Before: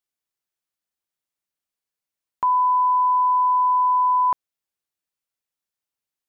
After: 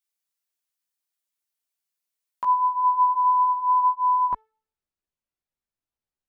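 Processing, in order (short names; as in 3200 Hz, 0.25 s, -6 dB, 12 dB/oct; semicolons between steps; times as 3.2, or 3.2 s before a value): de-hum 438.2 Hz, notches 27; tilt +2 dB/oct, from 2.44 s -2.5 dB/oct; chorus voices 4, 0.41 Hz, delay 16 ms, depth 2.9 ms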